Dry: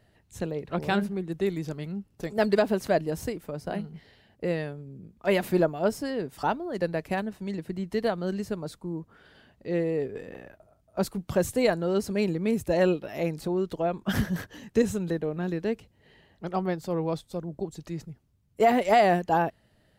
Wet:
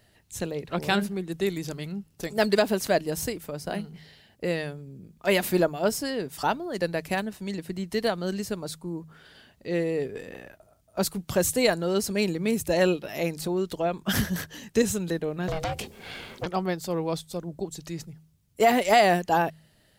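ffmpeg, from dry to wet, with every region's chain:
-filter_complex "[0:a]asettb=1/sr,asplit=3[a][b][c];[a]atrim=end=15.484[d];[b]atrim=start=15.48:end=16.46,asetpts=PTS-STARTPTS,afade=t=in:d=0.004:c=qsin,afade=t=out:st=0.976:d=0.004:c=qsin,acompressor=threshold=-38dB:ratio=8:attack=3.2:release=140:knee=1:detection=peak,aeval=exprs='val(0)*sin(2*PI*310*n/s)':c=same,aeval=exprs='0.0668*sin(PI/2*5.01*val(0)/0.0668)':c=same[e];[c]atrim=start=16.456[f];[d][e]acrossfade=d=0.004:c1=hsin:c2=qsin[g];[g][f]acrossfade=d=0.004:c1=qsin:c2=hsin,highshelf=f=2.6k:g=11,bandreject=f=78.91:t=h:w=4,bandreject=f=157.82:t=h:w=4"

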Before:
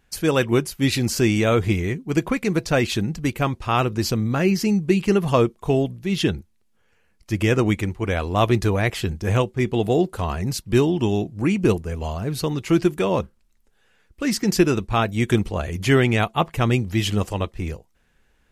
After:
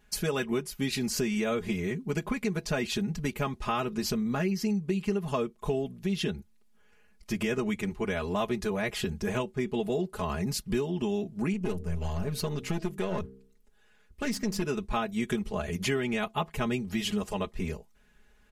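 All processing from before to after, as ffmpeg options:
-filter_complex "[0:a]asettb=1/sr,asplit=3[a][b][c];[a]atrim=end=11.534[d];[b]atrim=start=11.53:end=14.62,asetpts=PTS-STARTPTS,afade=t=in:d=0.004:c=qsin,afade=t=out:st=3.086:d=0.004:c=qsin,equalizer=f=89:w=3.4:g=13,bandreject=f=65.28:t=h:w=4,bandreject=f=130.56:t=h:w=4,bandreject=f=195.84:t=h:w=4,bandreject=f=261.12:t=h:w=4,bandreject=f=326.4:t=h:w=4,bandreject=f=391.68:t=h:w=4,bandreject=f=456.96:t=h:w=4,aeval=exprs='(tanh(5.62*val(0)+0.6)-tanh(0.6))/5.62':c=same[e];[c]atrim=start=14.616[f];[d][e]acrossfade=d=0.004:c1=hsin:c2=qsin[g];[g][f]acrossfade=d=0.004:c1=qsin:c2=hsin,aecho=1:1:4.8:0.93,acompressor=threshold=-25dB:ratio=4,volume=-3dB"

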